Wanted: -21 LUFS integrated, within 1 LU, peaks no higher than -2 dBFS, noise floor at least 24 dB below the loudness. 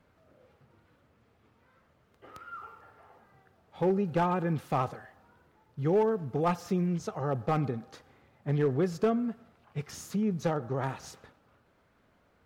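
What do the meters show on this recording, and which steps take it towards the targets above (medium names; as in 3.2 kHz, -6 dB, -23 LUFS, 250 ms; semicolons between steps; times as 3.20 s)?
clipped samples 0.4%; clipping level -19.5 dBFS; loudness -30.5 LUFS; peak level -19.5 dBFS; loudness target -21.0 LUFS
-> clip repair -19.5 dBFS; trim +9.5 dB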